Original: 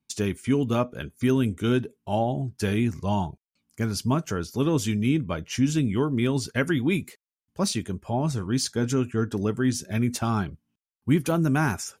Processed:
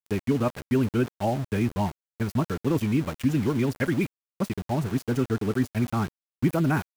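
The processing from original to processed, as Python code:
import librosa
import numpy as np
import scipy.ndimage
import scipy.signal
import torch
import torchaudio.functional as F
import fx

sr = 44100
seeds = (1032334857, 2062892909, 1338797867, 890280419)

y = fx.stretch_vocoder(x, sr, factor=0.58)
y = fx.band_shelf(y, sr, hz=5500.0, db=-11.5, octaves=1.7)
y = np.where(np.abs(y) >= 10.0 ** (-33.5 / 20.0), y, 0.0)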